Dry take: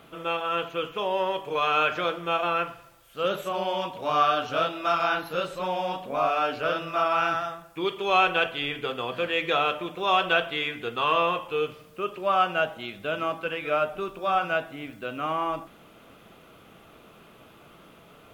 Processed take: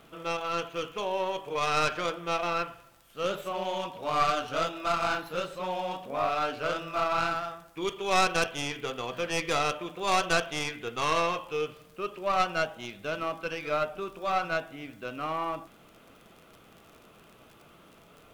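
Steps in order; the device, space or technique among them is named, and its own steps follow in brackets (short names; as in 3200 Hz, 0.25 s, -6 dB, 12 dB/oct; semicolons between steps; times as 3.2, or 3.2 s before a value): record under a worn stylus (tracing distortion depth 0.14 ms; crackle 38/s -38 dBFS; pink noise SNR 37 dB); gain -4 dB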